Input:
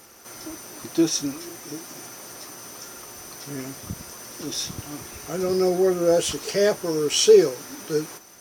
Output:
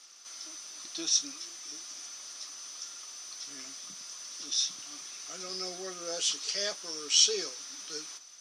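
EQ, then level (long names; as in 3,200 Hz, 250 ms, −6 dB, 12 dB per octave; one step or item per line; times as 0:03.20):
loudspeaker in its box 120–5,700 Hz, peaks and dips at 130 Hz +4 dB, 190 Hz +9 dB, 280 Hz +8 dB, 630 Hz +4 dB, 1,200 Hz +6 dB, 3,500 Hz +4 dB
first difference
high-shelf EQ 4,000 Hz +7.5 dB
0.0 dB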